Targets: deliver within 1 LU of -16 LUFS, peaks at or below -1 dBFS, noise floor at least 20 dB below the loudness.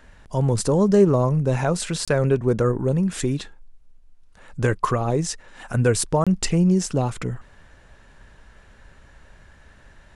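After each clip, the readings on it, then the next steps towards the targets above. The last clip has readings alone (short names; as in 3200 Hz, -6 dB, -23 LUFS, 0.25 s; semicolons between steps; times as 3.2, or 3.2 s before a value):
dropouts 2; longest dropout 26 ms; loudness -21.5 LUFS; peak -5.5 dBFS; loudness target -16.0 LUFS
-> interpolate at 2.05/6.24, 26 ms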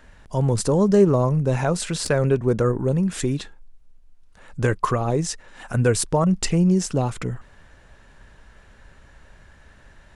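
dropouts 0; loudness -21.5 LUFS; peak -5.5 dBFS; loudness target -16.0 LUFS
-> gain +5.5 dB; limiter -1 dBFS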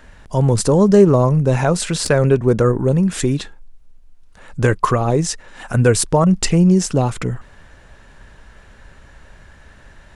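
loudness -16.0 LUFS; peak -1.0 dBFS; noise floor -46 dBFS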